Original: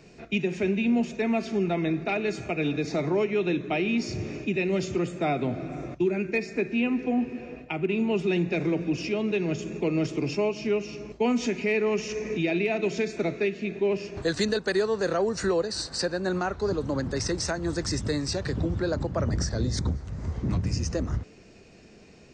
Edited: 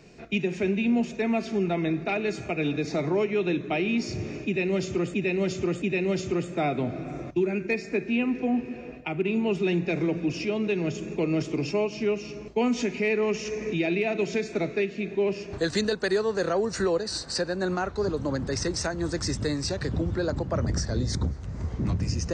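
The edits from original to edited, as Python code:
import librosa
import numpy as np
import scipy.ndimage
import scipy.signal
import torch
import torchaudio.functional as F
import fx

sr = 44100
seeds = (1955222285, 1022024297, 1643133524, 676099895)

y = fx.edit(x, sr, fx.repeat(start_s=4.46, length_s=0.68, count=3), tone=tone)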